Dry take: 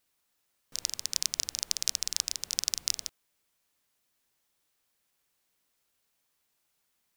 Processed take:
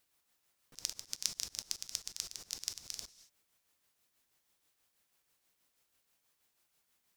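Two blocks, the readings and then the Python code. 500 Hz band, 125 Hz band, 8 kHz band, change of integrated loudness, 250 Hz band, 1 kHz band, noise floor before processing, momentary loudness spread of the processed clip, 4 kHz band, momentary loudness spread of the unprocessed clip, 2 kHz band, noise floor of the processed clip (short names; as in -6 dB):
-6.5 dB, -5.5 dB, -9.5 dB, -9.0 dB, -5.5 dB, -8.0 dB, -77 dBFS, 8 LU, -9.5 dB, 5 LU, -9.5 dB, -80 dBFS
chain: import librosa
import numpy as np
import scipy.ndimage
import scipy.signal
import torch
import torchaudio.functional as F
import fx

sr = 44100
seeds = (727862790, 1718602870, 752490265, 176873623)

y = fx.rev_gated(x, sr, seeds[0], gate_ms=240, shape='falling', drr_db=12.0)
y = y * (1.0 - 0.46 / 2.0 + 0.46 / 2.0 * np.cos(2.0 * np.pi * 6.2 * (np.arange(len(y)) / sr)))
y = fx.auto_swell(y, sr, attack_ms=166.0)
y = F.gain(torch.from_numpy(y), 1.5).numpy()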